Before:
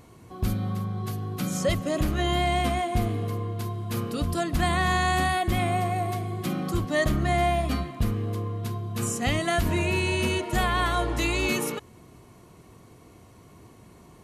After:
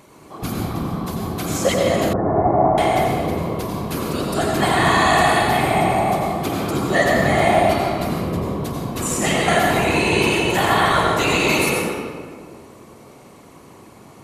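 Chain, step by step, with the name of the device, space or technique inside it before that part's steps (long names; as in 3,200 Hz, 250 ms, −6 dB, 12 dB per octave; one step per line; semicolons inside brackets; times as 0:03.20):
whispering ghost (random phases in short frames; high-pass filter 270 Hz 6 dB per octave; convolution reverb RT60 1.8 s, pre-delay 80 ms, DRR −1.5 dB)
0:02.13–0:02.78: inverse Chebyshev low-pass filter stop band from 3,000 Hz, stop band 50 dB
level +6 dB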